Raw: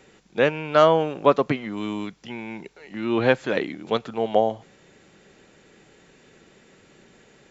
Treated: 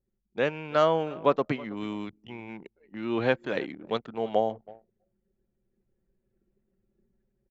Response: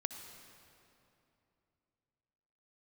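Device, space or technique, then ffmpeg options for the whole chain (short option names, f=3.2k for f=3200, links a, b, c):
voice memo with heavy noise removal: -filter_complex "[0:a]asplit=3[a][b][c];[a]afade=t=out:st=2.08:d=0.02[d];[b]equalizer=f=100:t=o:w=0.33:g=9,equalizer=f=200:t=o:w=0.33:g=-9,equalizer=f=1.6k:t=o:w=0.33:g=-10,equalizer=f=4k:t=o:w=0.33:g=-4,afade=t=in:st=2.08:d=0.02,afade=t=out:st=2.48:d=0.02[e];[c]afade=t=in:st=2.48:d=0.02[f];[d][e][f]amix=inputs=3:normalize=0,asplit=2[g][h];[h]adelay=322,lowpass=f=4.3k:p=1,volume=-21.5dB,asplit=2[i][j];[j]adelay=322,lowpass=f=4.3k:p=1,volume=0.2[k];[g][i][k]amix=inputs=3:normalize=0,anlmdn=1.58,dynaudnorm=f=470:g=5:m=7dB,volume=-7dB"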